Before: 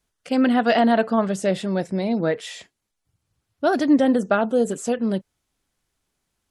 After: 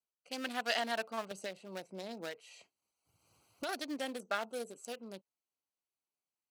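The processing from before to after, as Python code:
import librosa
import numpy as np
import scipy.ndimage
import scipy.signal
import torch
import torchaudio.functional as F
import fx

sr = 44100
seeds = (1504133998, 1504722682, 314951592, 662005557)

y = fx.wiener(x, sr, points=25)
y = np.diff(y, prepend=0.0)
y = fx.band_squash(y, sr, depth_pct=100, at=(1.31, 3.69))
y = y * librosa.db_to_amplitude(3.0)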